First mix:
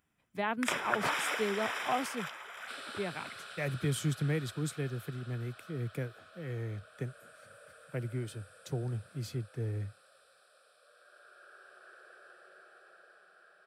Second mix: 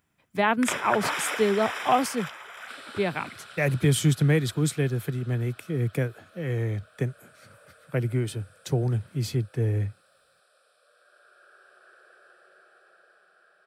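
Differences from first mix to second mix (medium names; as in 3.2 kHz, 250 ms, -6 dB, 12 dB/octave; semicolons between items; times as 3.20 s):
speech +10.5 dB; first sound +3.5 dB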